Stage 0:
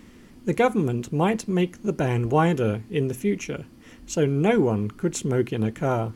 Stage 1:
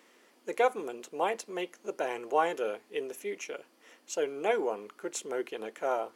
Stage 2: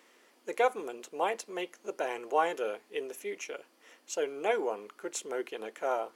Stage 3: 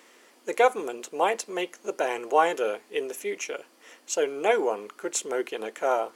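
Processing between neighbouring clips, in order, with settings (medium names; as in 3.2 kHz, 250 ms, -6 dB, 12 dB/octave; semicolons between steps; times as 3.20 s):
ladder high-pass 400 Hz, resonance 25%
bass shelf 180 Hz -9 dB
peaking EQ 7.7 kHz +3 dB 0.77 oct; trim +6.5 dB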